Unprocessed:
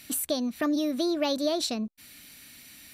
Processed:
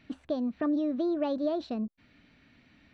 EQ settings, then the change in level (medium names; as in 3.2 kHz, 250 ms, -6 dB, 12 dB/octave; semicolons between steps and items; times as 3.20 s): dynamic bell 2.2 kHz, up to -6 dB, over -57 dBFS, Q 5.1; distance through air 100 m; tape spacing loss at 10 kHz 37 dB; 0.0 dB